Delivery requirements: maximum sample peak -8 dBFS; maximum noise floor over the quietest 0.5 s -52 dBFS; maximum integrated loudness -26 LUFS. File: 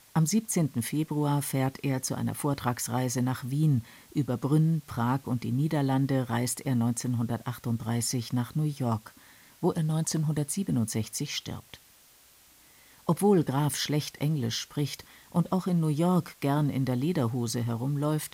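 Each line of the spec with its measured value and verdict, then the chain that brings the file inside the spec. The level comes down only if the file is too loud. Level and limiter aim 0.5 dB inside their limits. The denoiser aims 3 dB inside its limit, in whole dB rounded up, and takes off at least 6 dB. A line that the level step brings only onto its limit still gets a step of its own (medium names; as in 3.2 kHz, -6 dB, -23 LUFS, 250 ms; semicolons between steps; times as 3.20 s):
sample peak -12.0 dBFS: pass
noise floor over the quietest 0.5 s -58 dBFS: pass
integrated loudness -29.0 LUFS: pass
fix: none needed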